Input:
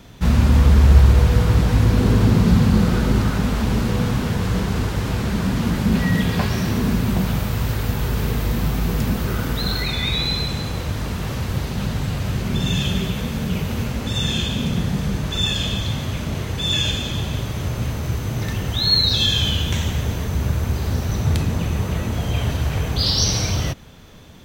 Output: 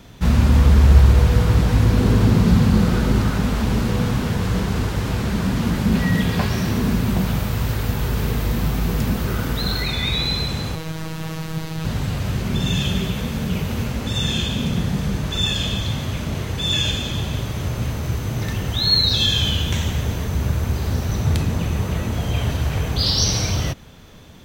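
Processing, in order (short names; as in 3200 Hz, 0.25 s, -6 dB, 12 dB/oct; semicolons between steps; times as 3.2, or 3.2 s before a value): 10.75–11.85 robotiser 160 Hz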